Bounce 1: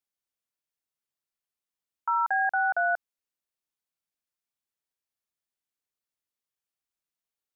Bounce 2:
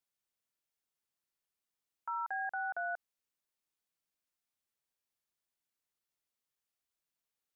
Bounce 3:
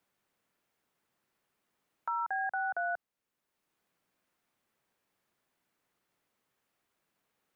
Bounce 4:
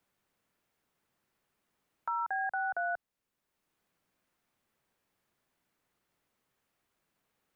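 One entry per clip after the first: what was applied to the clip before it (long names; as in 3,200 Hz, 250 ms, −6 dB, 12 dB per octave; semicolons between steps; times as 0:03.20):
brickwall limiter −30.5 dBFS, peak gain reduction 12 dB
low-shelf EQ 380 Hz +4 dB; multiband upward and downward compressor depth 40%; level +3.5 dB
low-shelf EQ 110 Hz +7.5 dB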